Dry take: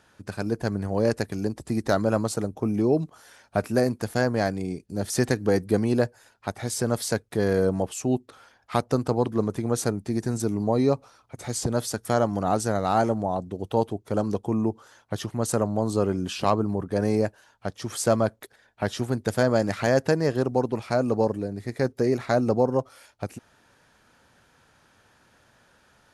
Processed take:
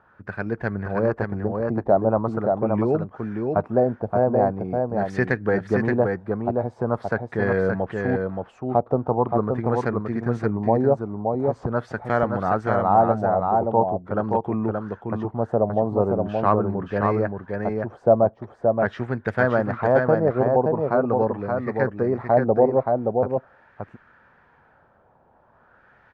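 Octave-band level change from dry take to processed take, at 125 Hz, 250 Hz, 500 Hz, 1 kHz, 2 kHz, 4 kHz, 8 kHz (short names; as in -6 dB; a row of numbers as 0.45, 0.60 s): +1.5 dB, +1.0 dB, +4.5 dB, +6.5 dB, +4.0 dB, under -15 dB, under -25 dB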